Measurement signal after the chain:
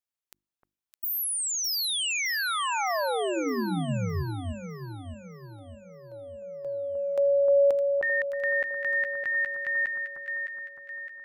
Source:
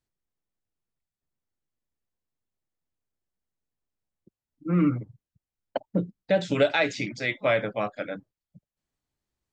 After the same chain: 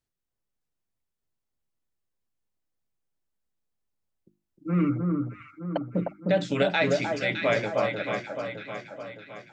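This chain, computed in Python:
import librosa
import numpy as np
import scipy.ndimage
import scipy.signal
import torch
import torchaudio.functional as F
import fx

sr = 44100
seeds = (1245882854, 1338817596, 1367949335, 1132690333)

y = fx.hum_notches(x, sr, base_hz=50, count=7)
y = fx.echo_alternate(y, sr, ms=306, hz=1400.0, feedback_pct=70, wet_db=-3)
y = F.gain(torch.from_numpy(y), -1.0).numpy()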